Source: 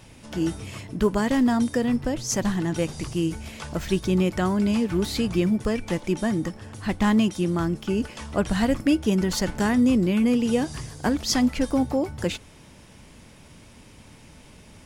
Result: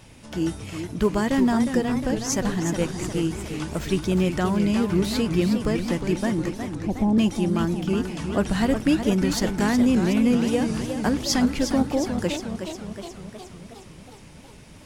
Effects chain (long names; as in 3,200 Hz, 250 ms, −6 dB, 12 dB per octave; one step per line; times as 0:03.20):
0:06.75–0:07.18: Butterworth low-pass 840 Hz 48 dB per octave
feedback echo with a swinging delay time 363 ms, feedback 63%, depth 151 cents, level −8 dB